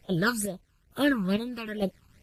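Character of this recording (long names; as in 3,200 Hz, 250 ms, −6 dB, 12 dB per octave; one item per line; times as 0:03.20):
a quantiser's noise floor 10 bits, dither none
chopped level 1.1 Hz, depth 65%, duty 50%
phaser sweep stages 12, 2.3 Hz, lowest notch 590–1,800 Hz
Ogg Vorbis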